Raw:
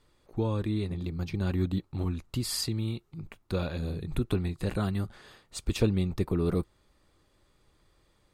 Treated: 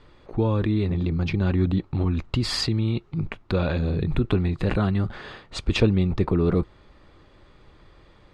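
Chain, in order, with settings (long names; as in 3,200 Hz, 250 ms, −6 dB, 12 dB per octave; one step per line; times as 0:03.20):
low-pass filter 3,300 Hz 12 dB per octave
in parallel at −2.5 dB: compressor whose output falls as the input rises −38 dBFS, ratio −1
on the sum: level +5.5 dB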